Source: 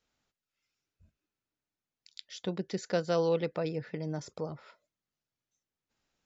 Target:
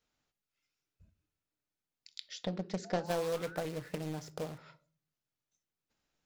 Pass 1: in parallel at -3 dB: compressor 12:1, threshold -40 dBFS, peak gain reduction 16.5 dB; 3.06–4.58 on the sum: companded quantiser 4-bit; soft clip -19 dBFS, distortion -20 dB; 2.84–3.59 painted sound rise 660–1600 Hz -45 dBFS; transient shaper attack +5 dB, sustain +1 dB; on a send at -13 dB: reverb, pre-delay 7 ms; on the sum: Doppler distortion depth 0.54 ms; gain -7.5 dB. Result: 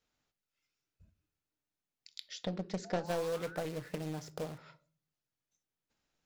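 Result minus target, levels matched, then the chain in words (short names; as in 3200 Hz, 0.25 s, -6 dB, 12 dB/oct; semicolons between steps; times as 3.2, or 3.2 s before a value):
soft clip: distortion +11 dB
in parallel at -3 dB: compressor 12:1, threshold -40 dBFS, peak gain reduction 16.5 dB; 3.06–4.58 on the sum: companded quantiser 4-bit; soft clip -12.5 dBFS, distortion -31 dB; 2.84–3.59 painted sound rise 660–1600 Hz -45 dBFS; transient shaper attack +5 dB, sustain +1 dB; on a send at -13 dB: reverb, pre-delay 7 ms; on the sum: Doppler distortion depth 0.54 ms; gain -7.5 dB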